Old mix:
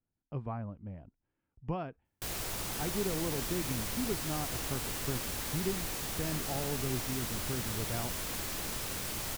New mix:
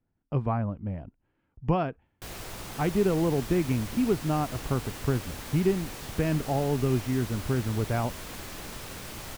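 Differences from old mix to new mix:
speech +10.5 dB; background: add high shelf 4600 Hz -7 dB

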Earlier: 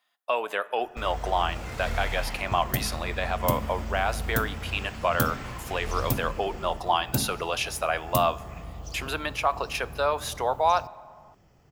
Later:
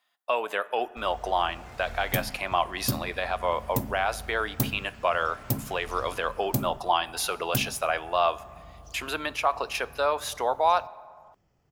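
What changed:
first sound -10.0 dB; second sound: entry -0.60 s

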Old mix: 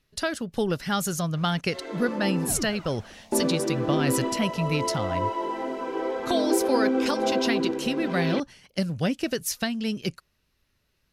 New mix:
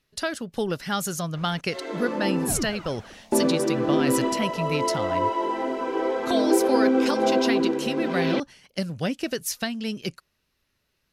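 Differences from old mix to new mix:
speech: add low shelf 140 Hz -6.5 dB; first sound +3.5 dB

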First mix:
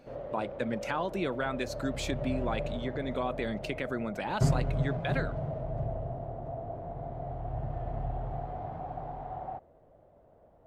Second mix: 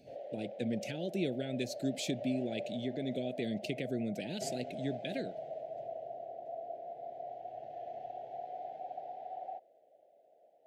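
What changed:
background: add resonant high-pass 740 Hz, resonance Q 4.5; master: add Butterworth band-stop 1100 Hz, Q 0.51

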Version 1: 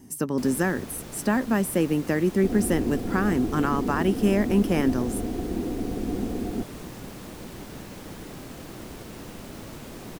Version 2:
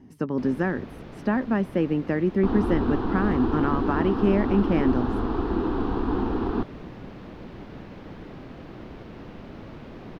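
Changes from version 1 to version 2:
second sound: remove rippled Chebyshev low-pass 750 Hz, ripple 6 dB; master: add air absorption 300 m

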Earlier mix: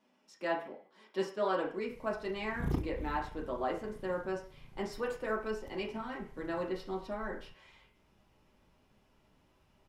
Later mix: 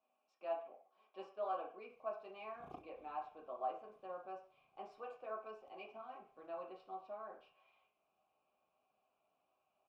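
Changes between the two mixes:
background: add high shelf 4500 Hz +6.5 dB; master: add vowel filter a

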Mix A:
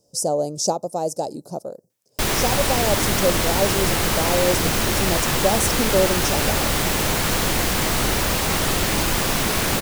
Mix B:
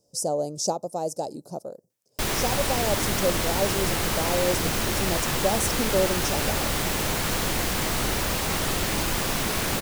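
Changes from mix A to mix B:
speech -4.5 dB; background -5.0 dB

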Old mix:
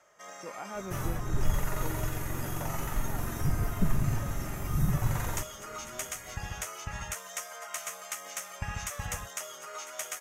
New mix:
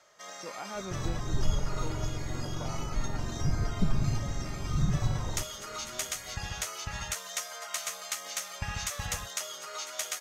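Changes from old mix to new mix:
second sound: add running mean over 26 samples; master: add bell 4200 Hz +12.5 dB 0.73 oct

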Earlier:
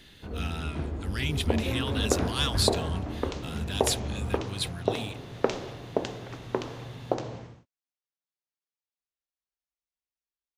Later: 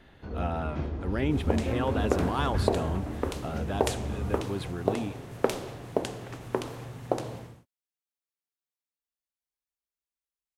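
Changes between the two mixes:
speech: remove EQ curve 150 Hz 0 dB, 480 Hz -19 dB, 4100 Hz +15 dB; second sound: remove steep low-pass 6800 Hz 36 dB/oct

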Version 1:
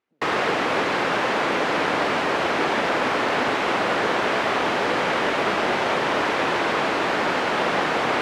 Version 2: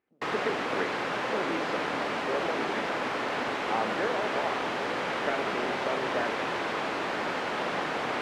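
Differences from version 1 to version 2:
background -10.0 dB; reverb: on, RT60 0.70 s

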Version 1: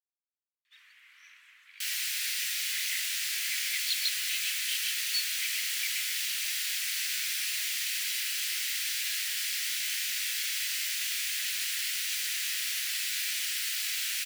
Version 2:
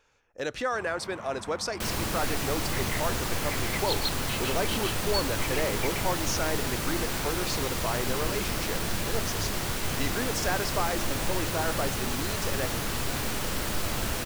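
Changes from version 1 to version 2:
speech: unmuted; second sound: send -10.0 dB; master: remove steep high-pass 1900 Hz 36 dB/oct

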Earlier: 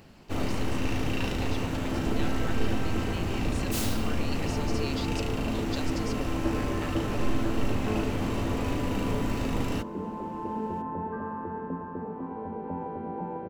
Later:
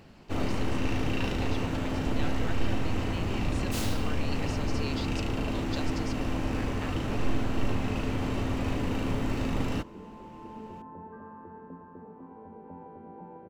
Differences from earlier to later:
second sound -11.0 dB; master: add high shelf 7800 Hz -8 dB

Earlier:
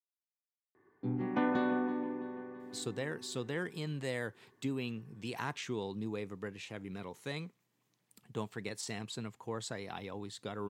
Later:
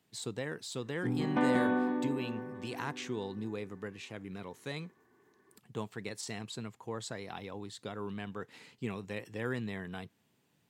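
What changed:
speech: entry -2.60 s; background: send +7.0 dB

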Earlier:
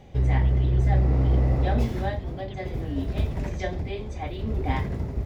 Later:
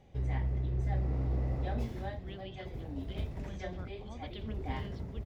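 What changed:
speech: entry +1.85 s; background -11.5 dB

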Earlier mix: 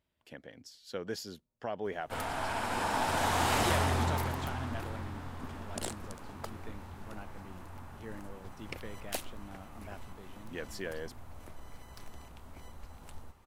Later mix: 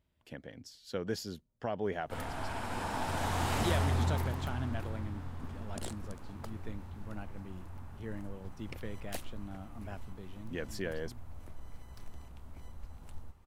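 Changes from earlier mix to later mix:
background -6.0 dB; master: add low shelf 210 Hz +9.5 dB

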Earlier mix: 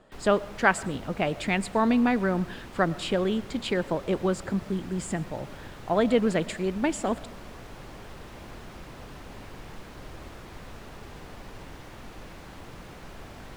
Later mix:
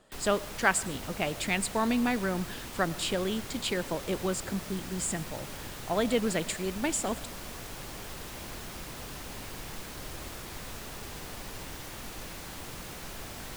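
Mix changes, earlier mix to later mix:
speech -5.5 dB; master: remove LPF 1800 Hz 6 dB/oct

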